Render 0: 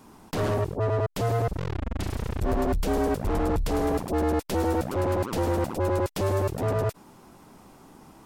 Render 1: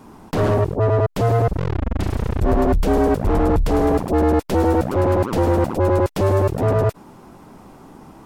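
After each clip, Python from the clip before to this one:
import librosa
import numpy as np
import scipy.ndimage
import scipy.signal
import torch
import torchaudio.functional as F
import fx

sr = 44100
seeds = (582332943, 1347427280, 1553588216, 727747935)

y = fx.high_shelf(x, sr, hz=2300.0, db=-8.0)
y = y * 10.0 ** (8.5 / 20.0)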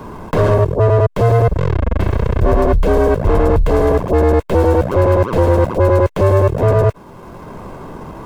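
y = scipy.ndimage.median_filter(x, 9, mode='constant')
y = y + 0.44 * np.pad(y, (int(1.9 * sr / 1000.0), 0))[:len(y)]
y = fx.band_squash(y, sr, depth_pct=40)
y = y * 10.0 ** (3.5 / 20.0)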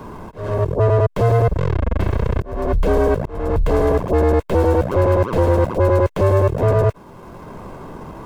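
y = fx.auto_swell(x, sr, attack_ms=390.0)
y = y * 10.0 ** (-3.0 / 20.0)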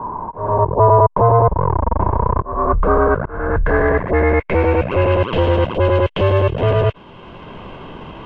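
y = fx.filter_sweep_lowpass(x, sr, from_hz=960.0, to_hz=3000.0, start_s=2.18, end_s=5.3, q=7.5)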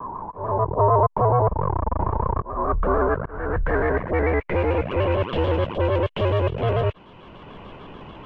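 y = fx.vibrato_shape(x, sr, shape='square', rate_hz=6.8, depth_cents=100.0)
y = y * 10.0 ** (-6.5 / 20.0)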